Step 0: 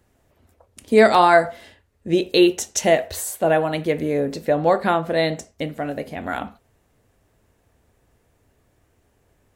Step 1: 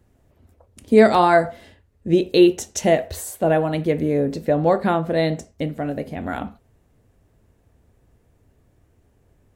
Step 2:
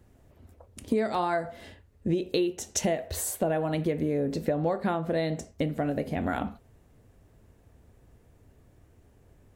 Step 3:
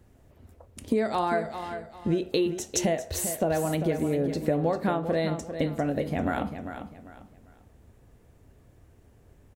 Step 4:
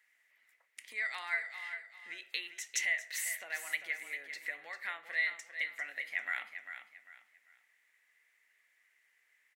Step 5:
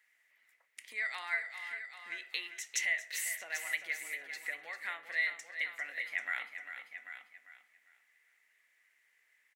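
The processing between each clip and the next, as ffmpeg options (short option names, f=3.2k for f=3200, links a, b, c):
-af "lowshelf=f=450:g=9.5,volume=-4dB"
-af "acompressor=threshold=-25dB:ratio=8,volume=1dB"
-af "aecho=1:1:397|794|1191:0.335|0.1|0.0301,volume=1dB"
-af "highpass=f=2k:t=q:w=9.3,volume=-7.5dB"
-af "aecho=1:1:790:0.266"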